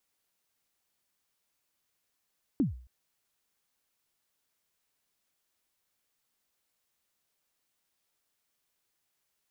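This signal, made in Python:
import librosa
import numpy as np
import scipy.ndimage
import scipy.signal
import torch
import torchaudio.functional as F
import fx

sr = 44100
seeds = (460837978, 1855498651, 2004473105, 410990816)

y = fx.drum_kick(sr, seeds[0], length_s=0.27, level_db=-20.0, start_hz=320.0, end_hz=62.0, sweep_ms=139.0, decay_s=0.46, click=False)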